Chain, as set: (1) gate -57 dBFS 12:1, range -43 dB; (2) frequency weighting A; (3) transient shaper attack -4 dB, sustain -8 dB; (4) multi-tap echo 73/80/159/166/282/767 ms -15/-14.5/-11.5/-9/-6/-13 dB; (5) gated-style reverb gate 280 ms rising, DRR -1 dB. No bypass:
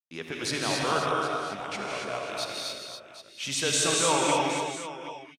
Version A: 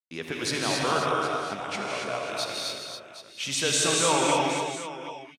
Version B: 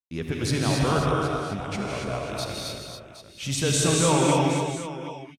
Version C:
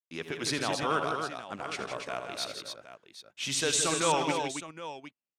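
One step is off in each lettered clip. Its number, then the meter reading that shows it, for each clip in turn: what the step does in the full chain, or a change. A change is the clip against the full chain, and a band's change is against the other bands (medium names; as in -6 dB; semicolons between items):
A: 3, loudness change +1.0 LU; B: 2, 125 Hz band +14.0 dB; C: 5, echo-to-direct 4.0 dB to -2.5 dB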